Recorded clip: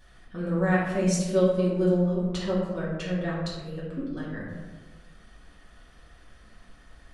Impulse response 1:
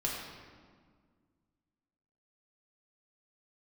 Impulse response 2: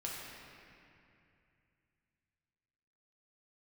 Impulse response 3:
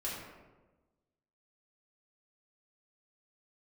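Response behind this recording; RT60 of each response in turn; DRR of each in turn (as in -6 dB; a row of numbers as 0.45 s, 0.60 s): 3; 1.8 s, 2.6 s, 1.2 s; -5.0 dB, -4.5 dB, -7.5 dB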